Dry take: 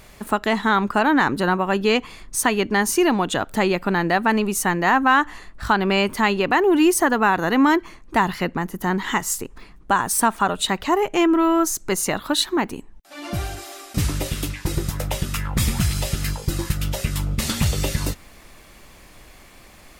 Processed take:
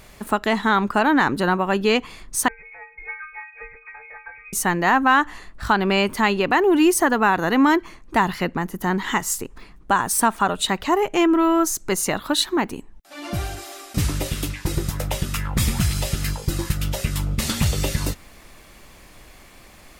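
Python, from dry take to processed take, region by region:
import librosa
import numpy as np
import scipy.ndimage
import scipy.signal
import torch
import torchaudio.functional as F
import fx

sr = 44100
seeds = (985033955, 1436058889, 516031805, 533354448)

y = fx.chain(x, sr, fx.stiff_resonator(f0_hz=300.0, decay_s=0.41, stiffness=0.008),
    fx.freq_invert(carrier_hz=2500), at=(2.48, 4.53))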